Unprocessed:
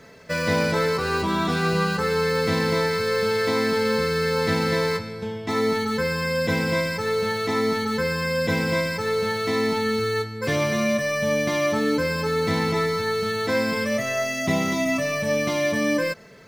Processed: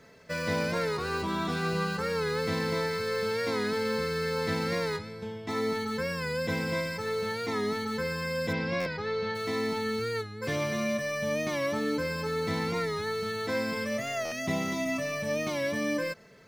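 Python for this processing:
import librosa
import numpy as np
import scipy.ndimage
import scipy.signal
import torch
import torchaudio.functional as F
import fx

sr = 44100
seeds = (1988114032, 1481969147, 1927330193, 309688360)

y = fx.lowpass(x, sr, hz=4900.0, slope=24, at=(8.52, 9.34), fade=0.02)
y = fx.buffer_glitch(y, sr, at_s=(8.8, 14.25), block=512, repeats=5)
y = fx.record_warp(y, sr, rpm=45.0, depth_cents=100.0)
y = y * 10.0 ** (-7.5 / 20.0)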